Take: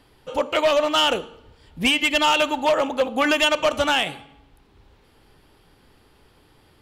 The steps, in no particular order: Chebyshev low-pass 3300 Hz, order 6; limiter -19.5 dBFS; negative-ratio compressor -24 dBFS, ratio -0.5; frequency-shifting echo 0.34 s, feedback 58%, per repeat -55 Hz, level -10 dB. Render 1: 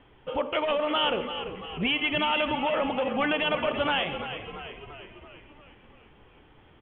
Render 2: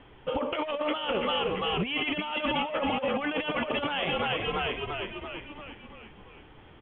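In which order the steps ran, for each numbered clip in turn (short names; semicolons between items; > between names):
limiter > negative-ratio compressor > Chebyshev low-pass > frequency-shifting echo; frequency-shifting echo > negative-ratio compressor > Chebyshev low-pass > limiter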